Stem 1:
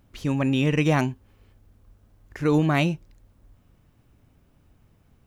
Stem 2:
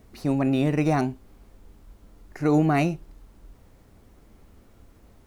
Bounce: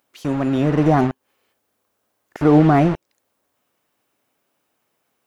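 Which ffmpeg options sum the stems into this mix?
-filter_complex "[0:a]highpass=490,volume=-2dB[a];[1:a]acrusher=bits=4:mix=0:aa=0.000001,dynaudnorm=f=450:g=3:m=10dB,lowpass=1.5k,volume=-1,volume=0dB,asplit=2[b][c];[c]apad=whole_len=232216[d];[a][d]sidechaincompress=threshold=-21dB:ratio=8:attack=21:release=336[e];[e][b]amix=inputs=2:normalize=0,highshelf=f=5.7k:g=6.5"

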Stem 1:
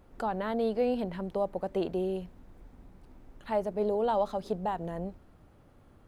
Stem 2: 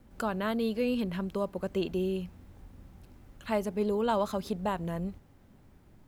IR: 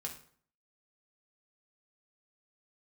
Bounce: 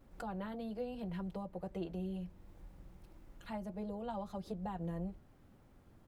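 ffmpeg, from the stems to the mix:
-filter_complex "[0:a]acompressor=threshold=-31dB:ratio=6,flanger=delay=7.2:depth=2.8:regen=-48:speed=0.73:shape=triangular,volume=-4.5dB[a];[1:a]acrossover=split=260[b][c];[c]acompressor=threshold=-51dB:ratio=2.5[d];[b][d]amix=inputs=2:normalize=0,adelay=4,volume=-6.5dB[e];[a][e]amix=inputs=2:normalize=0"

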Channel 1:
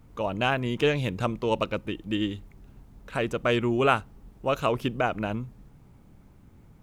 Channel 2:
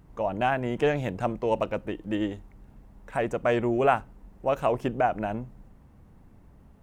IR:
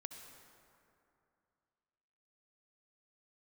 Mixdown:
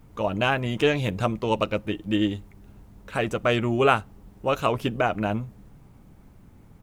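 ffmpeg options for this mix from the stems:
-filter_complex "[0:a]volume=2dB[a];[1:a]alimiter=limit=-17dB:level=0:latency=1:release=230,crystalizer=i=1.5:c=0,adelay=10,volume=-5dB[b];[a][b]amix=inputs=2:normalize=0"

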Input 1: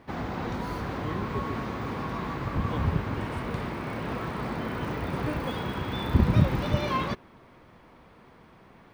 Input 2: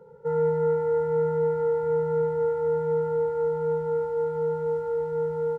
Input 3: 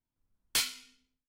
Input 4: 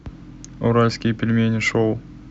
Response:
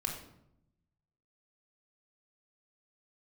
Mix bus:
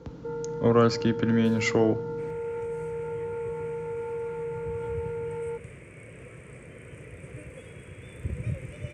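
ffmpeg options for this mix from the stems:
-filter_complex "[0:a]firequalizer=gain_entry='entry(130,0);entry(220,-13);entry(500,-1);entry(810,-22);entry(2300,2);entry(4000,-22);entry(8300,12);entry(15000,-29)':delay=0.05:min_phase=1,adelay=2100,volume=-7dB[a];[1:a]alimiter=level_in=3.5dB:limit=-24dB:level=0:latency=1,volume=-3.5dB,volume=-0.5dB[b];[2:a]alimiter=level_in=5.5dB:limit=-24dB:level=0:latency=1,volume=-5.5dB,adelay=900,volume=-19dB[c];[3:a]equalizer=f=2.1k:w=0.95:g=-5,volume=-4dB,asplit=2[d][e];[e]volume=-17dB[f];[4:a]atrim=start_sample=2205[g];[f][g]afir=irnorm=-1:irlink=0[h];[a][b][c][d][h]amix=inputs=5:normalize=0,highpass=51,lowshelf=f=86:g=-5.5"

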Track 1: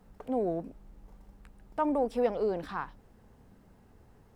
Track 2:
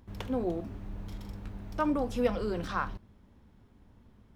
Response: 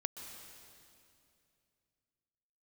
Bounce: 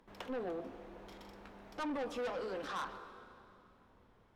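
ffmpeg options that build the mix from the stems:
-filter_complex "[0:a]lowpass=1.1k,volume=-10.5dB[a];[1:a]highpass=470,aemphasis=mode=reproduction:type=cd,asoftclip=type=hard:threshold=-25.5dB,volume=-1,volume=-3dB,asplit=2[b][c];[c]volume=-5.5dB[d];[2:a]atrim=start_sample=2205[e];[d][e]afir=irnorm=-1:irlink=0[f];[a][b][f]amix=inputs=3:normalize=0,asoftclip=type=tanh:threshold=-35dB"

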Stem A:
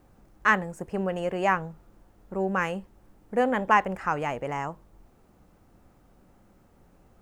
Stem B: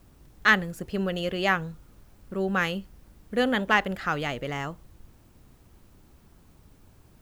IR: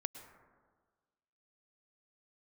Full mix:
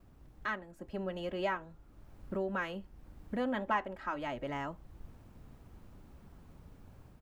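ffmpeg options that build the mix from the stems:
-filter_complex "[0:a]flanger=delay=5.4:depth=5.2:regen=73:speed=0.46:shape=triangular,volume=-11.5dB,asplit=2[a][b];[1:a]equalizer=f=350:t=o:w=0.32:g=-3.5,adelay=2.9,volume=-4dB[c];[b]apad=whole_len=318319[d];[c][d]sidechaincompress=threshold=-50dB:ratio=5:attack=33:release=590[e];[a][e]amix=inputs=2:normalize=0,highshelf=f=2.9k:g=-11,dynaudnorm=f=590:g=3:m=5dB"

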